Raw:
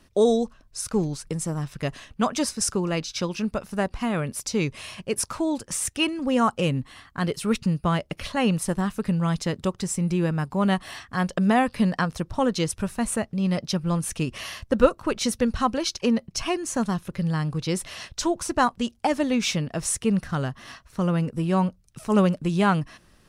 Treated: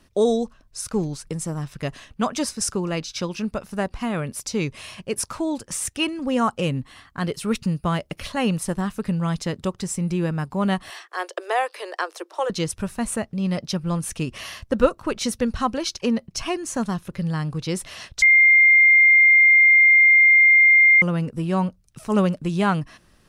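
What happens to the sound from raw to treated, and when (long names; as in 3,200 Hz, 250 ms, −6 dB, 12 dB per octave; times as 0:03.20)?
0:07.55–0:08.58: high-shelf EQ 9,300 Hz +5.5 dB
0:10.90–0:12.50: Butterworth high-pass 330 Hz 96 dB per octave
0:18.22–0:21.02: beep over 2,110 Hz −10 dBFS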